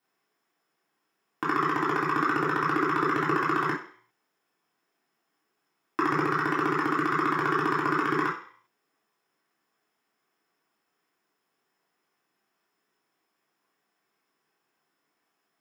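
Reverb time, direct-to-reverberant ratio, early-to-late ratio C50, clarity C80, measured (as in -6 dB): 0.50 s, -6.5 dB, 5.5 dB, 11.0 dB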